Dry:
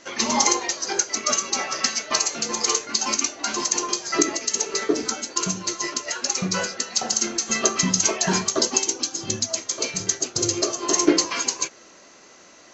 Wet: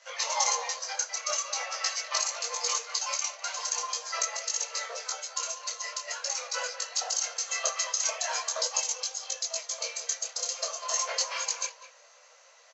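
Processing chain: Chebyshev high-pass 470 Hz, order 10; speakerphone echo 0.2 s, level -11 dB; detuned doubles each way 15 cents; gain -3 dB

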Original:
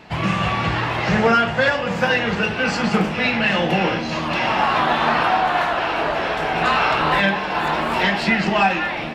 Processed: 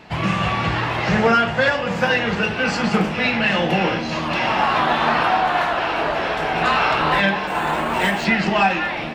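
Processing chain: 7.47–8.25 decimation joined by straight lines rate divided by 4×

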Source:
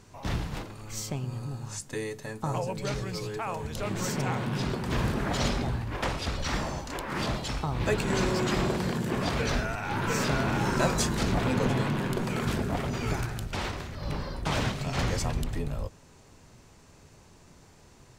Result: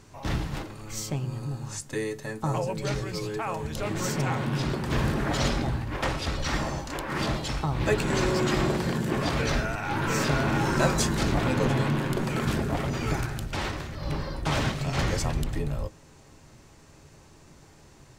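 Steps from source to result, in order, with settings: on a send: bell 1800 Hz +9.5 dB + reverb, pre-delay 3 ms, DRR 9 dB; on the sum: gain +1.5 dB

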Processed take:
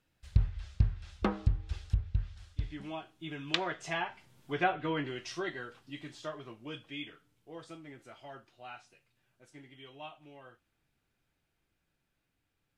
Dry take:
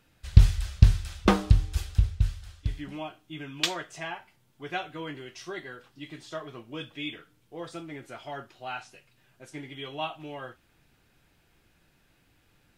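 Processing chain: Doppler pass-by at 4.62, 9 m/s, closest 6 m; treble ducked by the level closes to 1700 Hz, closed at -30.5 dBFS; gain +5 dB

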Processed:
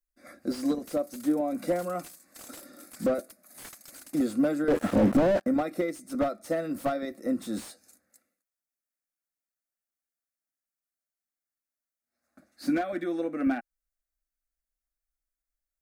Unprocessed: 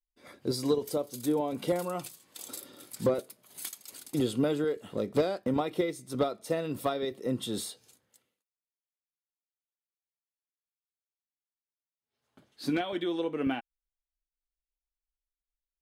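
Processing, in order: fixed phaser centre 630 Hz, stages 8; 4.68–5.46 sample leveller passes 5; slew limiter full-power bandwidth 29 Hz; gain +4.5 dB

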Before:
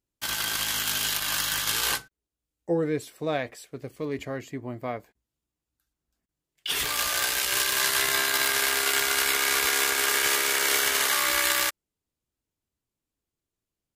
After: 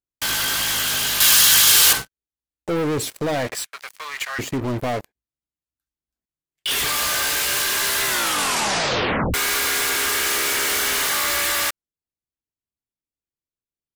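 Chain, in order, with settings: sample leveller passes 3; limiter -19 dBFS, peak gain reduction 10 dB; 3.55–4.39 HPF 1100 Hz 24 dB/oct; sample leveller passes 3; 1.2–1.93 high shelf 2300 Hz +11 dB; 8.04 tape stop 1.30 s

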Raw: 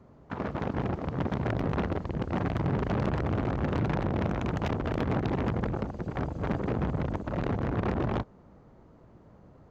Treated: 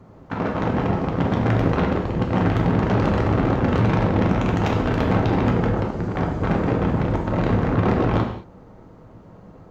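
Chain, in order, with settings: non-linear reverb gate 0.25 s falling, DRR 0.5 dB; gain +7 dB

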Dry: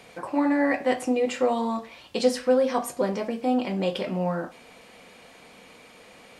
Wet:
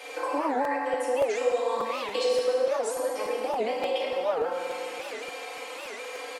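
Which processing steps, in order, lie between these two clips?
HPF 420 Hz 24 dB/oct; comb 3.8 ms, depth 85%; compressor 6:1, threshold -35 dBFS, peak gain reduction 21 dB; FDN reverb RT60 2.5 s, low-frequency decay 1.2×, high-frequency decay 0.65×, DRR -5 dB; crackling interface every 0.29 s, samples 256, repeat, from 0.64; record warp 78 rpm, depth 250 cents; gain +3.5 dB

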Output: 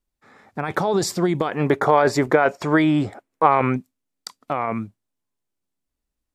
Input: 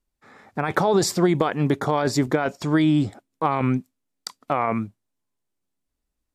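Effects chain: 1.52–3.76 band shelf 970 Hz +8.5 dB 3 oct; gain -1.5 dB

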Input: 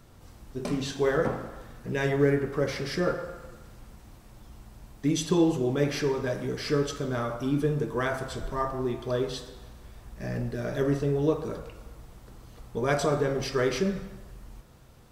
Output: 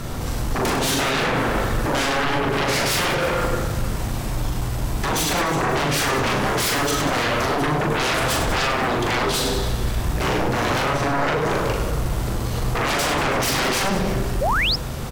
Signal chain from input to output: compressor 6:1, threshold -34 dBFS, peak gain reduction 15.5 dB; sine folder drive 16 dB, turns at -24.5 dBFS; on a send: reverse bouncing-ball echo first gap 40 ms, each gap 1.5×, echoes 5; on the sum: painted sound rise, 14.41–14.76, 490–5600 Hz -25 dBFS; gain +4.5 dB

